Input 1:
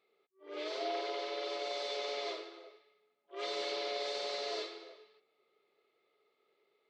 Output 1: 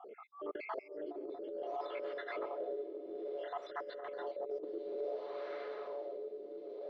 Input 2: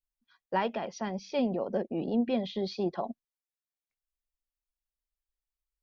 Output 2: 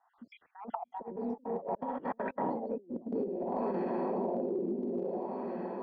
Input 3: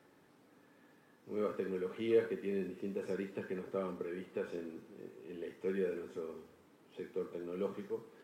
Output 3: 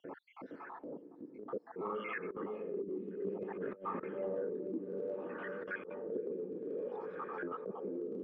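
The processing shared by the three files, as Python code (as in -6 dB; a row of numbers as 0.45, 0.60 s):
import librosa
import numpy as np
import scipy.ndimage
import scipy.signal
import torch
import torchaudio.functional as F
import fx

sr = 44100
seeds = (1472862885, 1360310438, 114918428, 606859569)

y = fx.spec_dropout(x, sr, seeds[0], share_pct=77)
y = scipy.signal.sosfilt(scipy.signal.butter(2, 200.0, 'highpass', fs=sr, output='sos'), y)
y = fx.echo_diffused(y, sr, ms=525, feedback_pct=65, wet_db=-10.0)
y = fx.over_compress(y, sr, threshold_db=-47.0, ratio=-0.5)
y = fx.filter_lfo_lowpass(y, sr, shape='sine', hz=0.58, low_hz=320.0, high_hz=1600.0, q=2.2)
y = fx.transient(y, sr, attack_db=-6, sustain_db=0)
y = fx.band_squash(y, sr, depth_pct=70)
y = y * 10.0 ** (8.5 / 20.0)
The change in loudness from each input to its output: -4.5, -3.5, -2.0 LU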